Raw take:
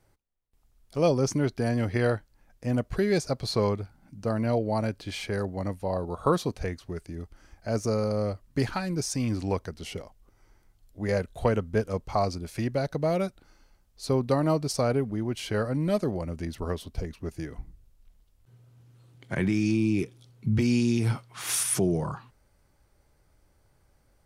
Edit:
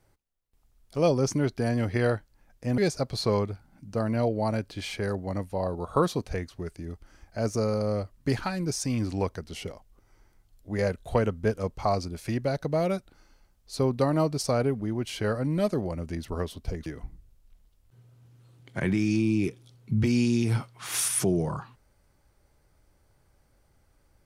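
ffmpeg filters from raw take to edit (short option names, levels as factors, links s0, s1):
-filter_complex "[0:a]asplit=3[s0][s1][s2];[s0]atrim=end=2.782[s3];[s1]atrim=start=3.078:end=17.162[s4];[s2]atrim=start=17.408[s5];[s3][s4]acrossfade=d=0.004:c1=hsin:c2=hsin[s6];[s6][s5]acrossfade=d=0.004:c1=hsin:c2=hsin"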